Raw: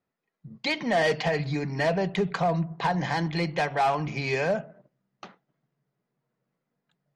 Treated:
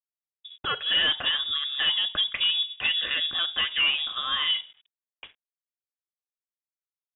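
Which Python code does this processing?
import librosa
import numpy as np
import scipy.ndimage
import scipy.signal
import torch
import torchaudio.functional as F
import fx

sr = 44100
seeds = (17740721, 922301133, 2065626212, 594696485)

y = np.sign(x) * np.maximum(np.abs(x) - 10.0 ** (-57.0 / 20.0), 0.0)
y = fx.freq_invert(y, sr, carrier_hz=3600)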